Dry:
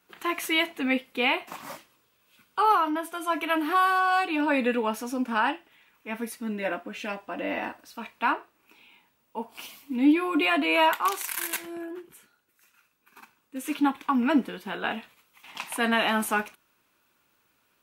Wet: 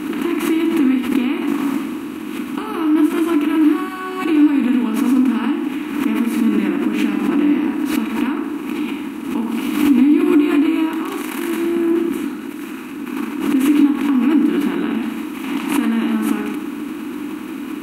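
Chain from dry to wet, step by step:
compressor on every frequency bin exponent 0.4
parametric band 77 Hz +9 dB 0.51 octaves
downward compressor, threshold −22 dBFS, peak gain reduction 9.5 dB
low shelf with overshoot 420 Hz +10.5 dB, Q 3
convolution reverb RT60 0.95 s, pre-delay 22 ms, DRR 4 dB
background raised ahead of every attack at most 63 dB per second
level −4.5 dB

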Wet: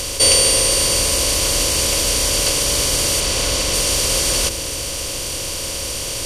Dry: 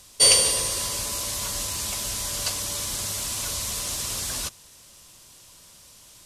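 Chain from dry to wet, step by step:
compressor on every frequency bin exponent 0.4
0:03.20–0:03.74: high-shelf EQ 8,400 Hz −8 dB
in parallel at −2.5 dB: brickwall limiter −14 dBFS, peak gain reduction 11.5 dB
on the sum: low-shelf EQ 73 Hz +12 dB
hollow resonant body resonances 290/500 Hz, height 6 dB
on a send at −14.5 dB: convolution reverb RT60 1.3 s, pre-delay 3 ms
on the sum: level −1 dB

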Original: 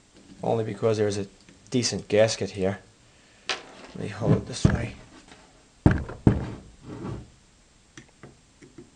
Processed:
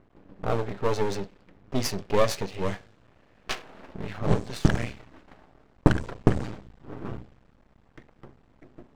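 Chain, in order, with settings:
low-pass that shuts in the quiet parts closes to 1,200 Hz, open at −17.5 dBFS
high-shelf EQ 5,100 Hz −4.5 dB, from 0:02.52 +7 dB
half-wave rectification
level +3 dB

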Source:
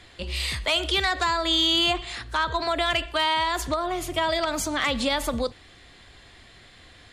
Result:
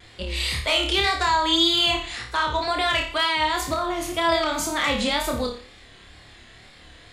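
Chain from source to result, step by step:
flutter between parallel walls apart 4.8 metres, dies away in 0.44 s
tape wow and flutter 72 cents

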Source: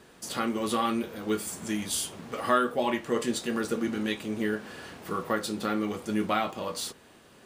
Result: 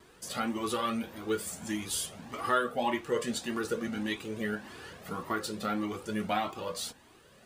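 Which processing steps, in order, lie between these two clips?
pitch vibrato 1.7 Hz 25 cents
flanger whose copies keep moving one way rising 1.7 Hz
level +1.5 dB

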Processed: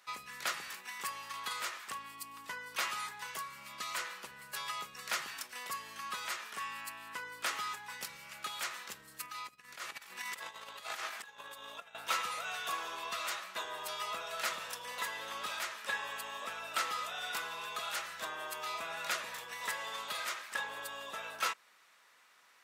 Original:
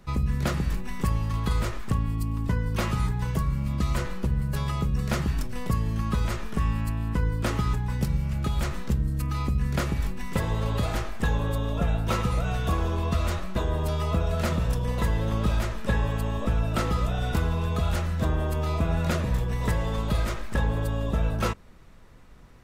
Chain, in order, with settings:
0:09.26–0:11.95: compressor whose output falls as the input rises −30 dBFS, ratio −0.5
high-pass filter 1,300 Hz 12 dB per octave

